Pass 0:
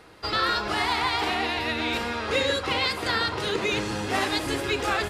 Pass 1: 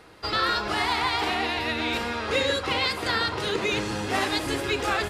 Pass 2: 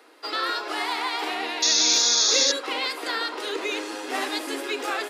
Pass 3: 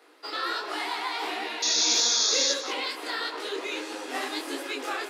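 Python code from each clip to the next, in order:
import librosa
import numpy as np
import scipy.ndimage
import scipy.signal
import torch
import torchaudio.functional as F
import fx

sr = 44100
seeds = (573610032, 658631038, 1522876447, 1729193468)

y1 = x
y2 = scipy.signal.sosfilt(scipy.signal.butter(16, 250.0, 'highpass', fs=sr, output='sos'), y1)
y2 = fx.high_shelf(y2, sr, hz=11000.0, db=6.5)
y2 = fx.spec_paint(y2, sr, seeds[0], shape='noise', start_s=1.62, length_s=0.9, low_hz=3300.0, high_hz=6900.0, level_db=-18.0)
y2 = F.gain(torch.from_numpy(y2), -2.5).numpy()
y3 = y2 + 10.0 ** (-15.0 / 20.0) * np.pad(y2, (int(191 * sr / 1000.0), 0))[:len(y2)]
y3 = fx.detune_double(y3, sr, cents=52)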